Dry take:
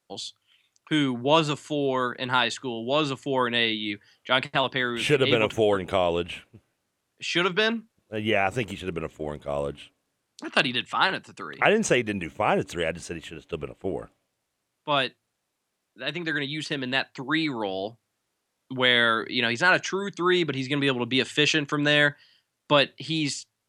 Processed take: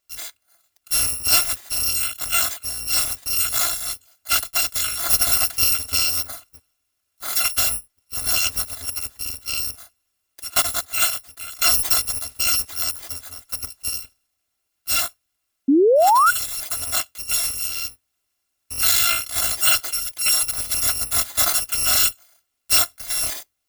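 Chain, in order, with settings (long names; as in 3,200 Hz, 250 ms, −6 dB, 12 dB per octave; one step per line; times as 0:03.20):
samples in bit-reversed order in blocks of 256 samples
sound drawn into the spectrogram rise, 0:15.68–0:16.31, 260–1,500 Hz −17 dBFS
level +3 dB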